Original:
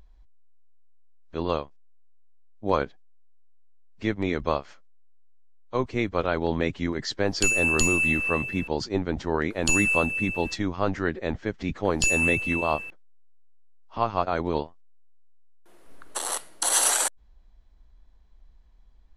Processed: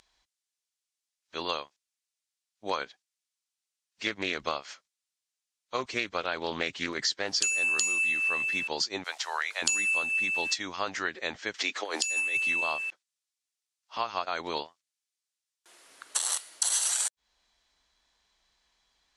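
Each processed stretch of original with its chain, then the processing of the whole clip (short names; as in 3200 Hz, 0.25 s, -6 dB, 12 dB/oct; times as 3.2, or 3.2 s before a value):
4.06–7.44 low shelf 430 Hz +5 dB + Doppler distortion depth 0.19 ms
9.04–9.62 HPF 660 Hz 24 dB/oct + requantised 10-bit, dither none
11.54–12.37 HPF 290 Hz 24 dB/oct + negative-ratio compressor -28 dBFS, ratio -0.5 + mismatched tape noise reduction encoder only
whole clip: weighting filter ITU-R 468; compressor 6:1, threshold -26 dBFS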